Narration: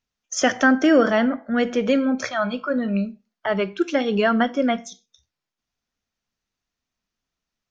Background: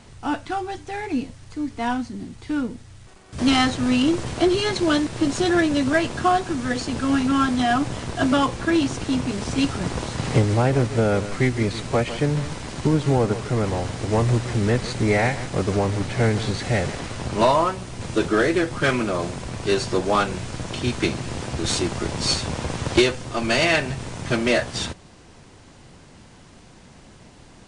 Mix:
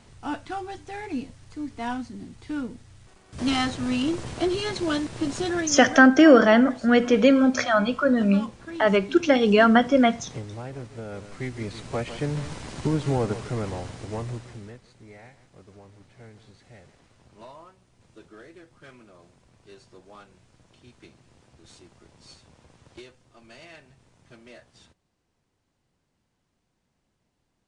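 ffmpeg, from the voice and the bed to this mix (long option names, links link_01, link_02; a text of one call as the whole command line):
ffmpeg -i stem1.wav -i stem2.wav -filter_complex "[0:a]adelay=5350,volume=2.5dB[link_01];[1:a]volume=6.5dB,afade=type=out:start_time=5.38:duration=0.7:silence=0.266073,afade=type=in:start_time=11.06:duration=1.49:silence=0.237137,afade=type=out:start_time=13.28:duration=1.52:silence=0.0707946[link_02];[link_01][link_02]amix=inputs=2:normalize=0" out.wav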